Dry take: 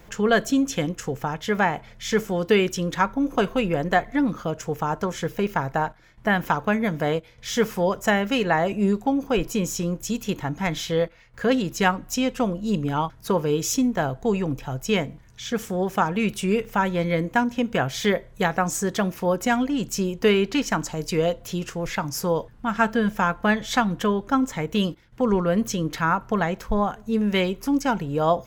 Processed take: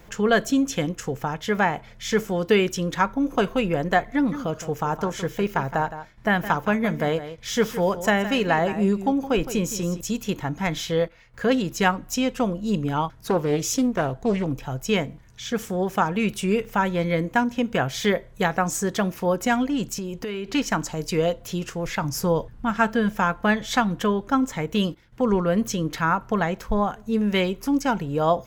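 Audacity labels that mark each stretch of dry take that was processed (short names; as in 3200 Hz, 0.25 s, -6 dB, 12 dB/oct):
4.100000	10.010000	echo 0.165 s -12.5 dB
13.170000	14.470000	Doppler distortion depth 0.34 ms
19.930000	20.490000	compressor 16:1, threshold -26 dBFS
22.010000	22.710000	low shelf 170 Hz +7.5 dB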